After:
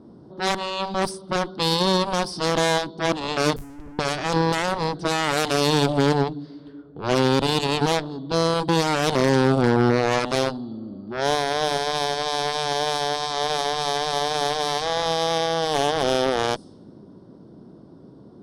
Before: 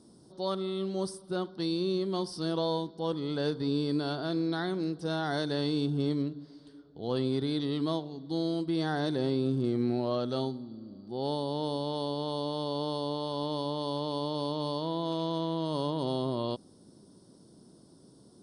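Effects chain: 3.56–3.99 s: Schmitt trigger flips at -40 dBFS; Chebyshev shaper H 3 -32 dB, 7 -10 dB, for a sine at -18.5 dBFS; level-controlled noise filter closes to 1.6 kHz, open at -27.5 dBFS; trim +9 dB

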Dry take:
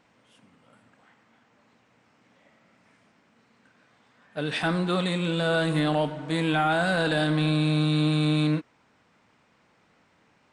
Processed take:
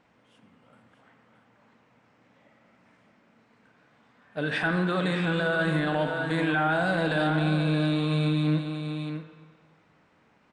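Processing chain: 4.43–6.74 s: peaking EQ 1.6 kHz +10 dB 0.33 oct; delay 623 ms -8.5 dB; peak limiter -16 dBFS, peak gain reduction 6 dB; treble shelf 3.8 kHz -8.5 dB; spring tank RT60 1.5 s, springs 44/58 ms, chirp 75 ms, DRR 8.5 dB; endings held to a fixed fall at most 170 dB/s

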